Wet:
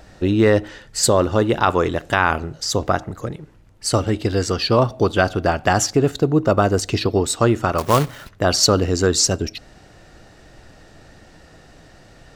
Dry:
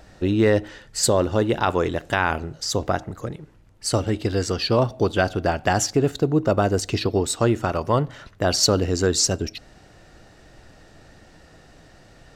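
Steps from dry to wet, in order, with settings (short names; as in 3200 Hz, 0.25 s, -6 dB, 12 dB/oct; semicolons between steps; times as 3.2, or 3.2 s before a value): dynamic EQ 1200 Hz, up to +5 dB, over -39 dBFS, Q 3.8; 7.78–8.29 companded quantiser 4-bit; gain +3 dB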